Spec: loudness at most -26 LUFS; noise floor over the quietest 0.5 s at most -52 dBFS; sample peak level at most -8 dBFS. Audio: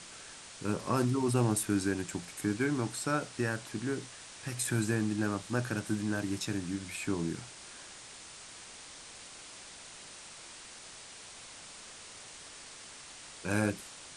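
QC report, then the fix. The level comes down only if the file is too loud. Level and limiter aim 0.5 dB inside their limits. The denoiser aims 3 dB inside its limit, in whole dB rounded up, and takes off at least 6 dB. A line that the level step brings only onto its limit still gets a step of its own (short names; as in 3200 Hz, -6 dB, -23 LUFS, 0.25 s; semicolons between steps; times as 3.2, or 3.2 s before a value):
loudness -33.0 LUFS: OK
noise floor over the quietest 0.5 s -50 dBFS: fail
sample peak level -15.5 dBFS: OK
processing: denoiser 6 dB, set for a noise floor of -50 dBFS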